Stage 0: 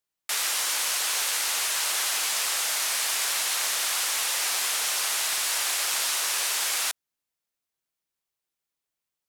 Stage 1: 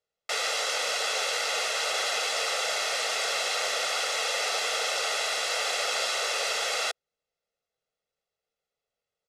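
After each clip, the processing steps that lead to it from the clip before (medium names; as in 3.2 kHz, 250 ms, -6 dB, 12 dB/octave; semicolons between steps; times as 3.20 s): low-pass 5.2 kHz 12 dB/octave; peaking EQ 450 Hz +15 dB 0.82 oct; comb 1.5 ms, depth 69%; trim -1 dB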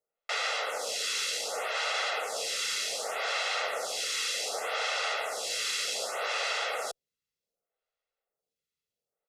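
lamp-driven phase shifter 0.66 Hz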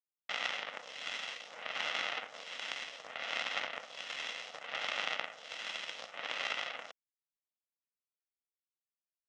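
half-wave rectifier; Chebyshev shaper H 3 -10 dB, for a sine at -18.5 dBFS; cabinet simulation 330–5000 Hz, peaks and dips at 380 Hz -9 dB, 2 kHz +4 dB, 3 kHz +6 dB, 4.5 kHz -8 dB; trim +7 dB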